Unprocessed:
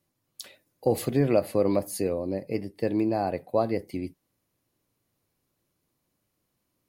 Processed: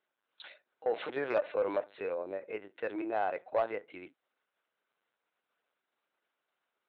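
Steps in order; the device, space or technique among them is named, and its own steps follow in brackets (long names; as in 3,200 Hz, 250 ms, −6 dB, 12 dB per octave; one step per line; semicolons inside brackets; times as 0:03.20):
talking toy (linear-prediction vocoder at 8 kHz pitch kept; high-pass filter 630 Hz 12 dB per octave; parametric band 1,500 Hz +9 dB 0.34 octaves; soft clipping −20 dBFS, distortion −19 dB)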